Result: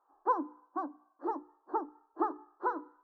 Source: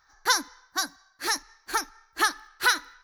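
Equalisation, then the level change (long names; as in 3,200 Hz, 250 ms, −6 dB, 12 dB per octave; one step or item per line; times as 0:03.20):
elliptic band-pass filter 290–1,100 Hz, stop band 40 dB
spectral tilt −3.5 dB per octave
mains-hum notches 60/120/180/240/300/360/420/480 Hz
−1.5 dB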